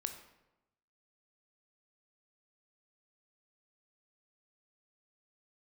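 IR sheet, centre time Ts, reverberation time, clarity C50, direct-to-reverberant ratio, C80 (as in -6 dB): 16 ms, 0.95 s, 9.0 dB, 6.5 dB, 11.0 dB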